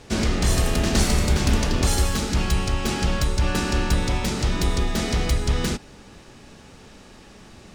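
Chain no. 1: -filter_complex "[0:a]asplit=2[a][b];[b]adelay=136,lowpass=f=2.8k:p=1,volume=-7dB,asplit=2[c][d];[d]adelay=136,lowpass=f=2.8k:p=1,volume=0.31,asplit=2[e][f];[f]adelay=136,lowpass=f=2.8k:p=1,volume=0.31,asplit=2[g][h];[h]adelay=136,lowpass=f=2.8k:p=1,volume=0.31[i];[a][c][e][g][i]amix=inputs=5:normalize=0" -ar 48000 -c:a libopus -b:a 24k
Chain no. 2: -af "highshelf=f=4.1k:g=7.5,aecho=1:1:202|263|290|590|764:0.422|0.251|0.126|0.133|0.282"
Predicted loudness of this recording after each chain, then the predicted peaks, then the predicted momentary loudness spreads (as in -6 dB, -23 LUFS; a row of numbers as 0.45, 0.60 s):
-22.0, -20.5 LUFS; -6.5, -4.0 dBFS; 4, 10 LU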